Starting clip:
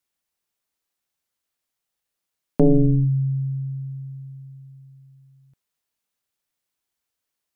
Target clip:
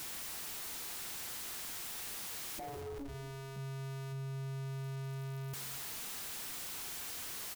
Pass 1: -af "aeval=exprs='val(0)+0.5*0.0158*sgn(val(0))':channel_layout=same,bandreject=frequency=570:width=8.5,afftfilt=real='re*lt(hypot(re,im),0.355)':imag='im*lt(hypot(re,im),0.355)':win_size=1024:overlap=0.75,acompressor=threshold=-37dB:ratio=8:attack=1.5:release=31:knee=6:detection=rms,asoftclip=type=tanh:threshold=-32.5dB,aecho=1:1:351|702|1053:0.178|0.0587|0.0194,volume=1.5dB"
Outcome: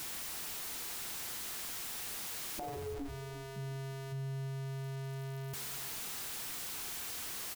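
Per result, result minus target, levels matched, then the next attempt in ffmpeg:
echo 128 ms late; soft clipping: distortion −12 dB
-af "aeval=exprs='val(0)+0.5*0.0158*sgn(val(0))':channel_layout=same,bandreject=frequency=570:width=8.5,afftfilt=real='re*lt(hypot(re,im),0.355)':imag='im*lt(hypot(re,im),0.355)':win_size=1024:overlap=0.75,acompressor=threshold=-37dB:ratio=8:attack=1.5:release=31:knee=6:detection=rms,asoftclip=type=tanh:threshold=-32.5dB,aecho=1:1:223|446|669:0.178|0.0587|0.0194,volume=1.5dB"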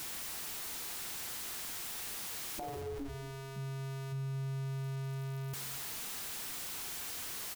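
soft clipping: distortion −12 dB
-af "aeval=exprs='val(0)+0.5*0.0158*sgn(val(0))':channel_layout=same,bandreject=frequency=570:width=8.5,afftfilt=real='re*lt(hypot(re,im),0.355)':imag='im*lt(hypot(re,im),0.355)':win_size=1024:overlap=0.75,acompressor=threshold=-37dB:ratio=8:attack=1.5:release=31:knee=6:detection=rms,asoftclip=type=tanh:threshold=-41dB,aecho=1:1:223|446|669:0.178|0.0587|0.0194,volume=1.5dB"

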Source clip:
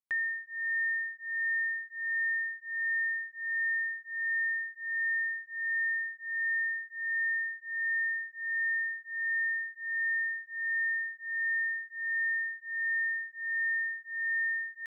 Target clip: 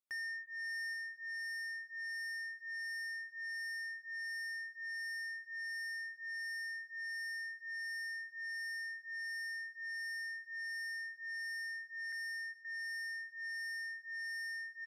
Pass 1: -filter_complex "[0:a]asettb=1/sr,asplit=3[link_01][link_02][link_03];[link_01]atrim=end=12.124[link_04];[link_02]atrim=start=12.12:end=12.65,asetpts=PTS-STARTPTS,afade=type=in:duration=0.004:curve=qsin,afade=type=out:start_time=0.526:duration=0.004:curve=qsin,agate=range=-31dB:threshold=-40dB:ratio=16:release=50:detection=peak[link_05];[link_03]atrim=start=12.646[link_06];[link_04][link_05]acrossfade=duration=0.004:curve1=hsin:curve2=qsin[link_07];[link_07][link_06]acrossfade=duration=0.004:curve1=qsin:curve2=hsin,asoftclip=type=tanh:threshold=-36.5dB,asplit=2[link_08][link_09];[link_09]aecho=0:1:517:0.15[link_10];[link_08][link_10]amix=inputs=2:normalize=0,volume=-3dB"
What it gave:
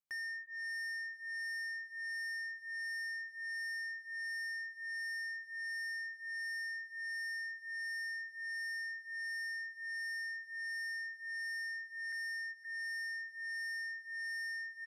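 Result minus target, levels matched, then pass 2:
echo 308 ms early
-filter_complex "[0:a]asettb=1/sr,asplit=3[link_01][link_02][link_03];[link_01]atrim=end=12.124[link_04];[link_02]atrim=start=12.12:end=12.65,asetpts=PTS-STARTPTS,afade=type=in:duration=0.004:curve=qsin,afade=type=out:start_time=0.526:duration=0.004:curve=qsin,agate=range=-31dB:threshold=-40dB:ratio=16:release=50:detection=peak[link_05];[link_03]atrim=start=12.646[link_06];[link_04][link_05]acrossfade=duration=0.004:curve1=hsin:curve2=qsin[link_07];[link_07][link_06]acrossfade=duration=0.004:curve1=qsin:curve2=hsin,asoftclip=type=tanh:threshold=-36.5dB,asplit=2[link_08][link_09];[link_09]aecho=0:1:825:0.15[link_10];[link_08][link_10]amix=inputs=2:normalize=0,volume=-3dB"

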